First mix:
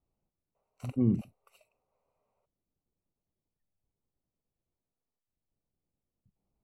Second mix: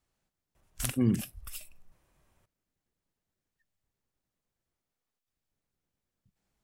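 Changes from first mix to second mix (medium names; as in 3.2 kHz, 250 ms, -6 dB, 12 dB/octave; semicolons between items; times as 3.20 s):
background: remove brick-wall FIR high-pass 390 Hz; master: remove boxcar filter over 26 samples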